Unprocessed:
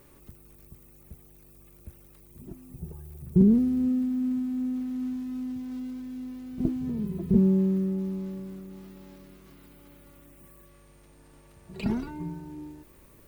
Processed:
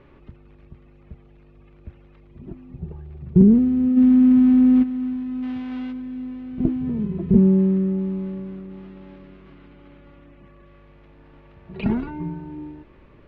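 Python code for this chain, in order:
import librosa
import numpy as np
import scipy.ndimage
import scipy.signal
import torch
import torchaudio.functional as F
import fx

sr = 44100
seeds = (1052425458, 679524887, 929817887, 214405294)

y = fx.envelope_flatten(x, sr, power=0.6, at=(5.42, 5.91), fade=0.02)
y = scipy.signal.sosfilt(scipy.signal.butter(4, 3100.0, 'lowpass', fs=sr, output='sos'), y)
y = fx.env_flatten(y, sr, amount_pct=70, at=(3.96, 4.82), fade=0.02)
y = y * librosa.db_to_amplitude(6.0)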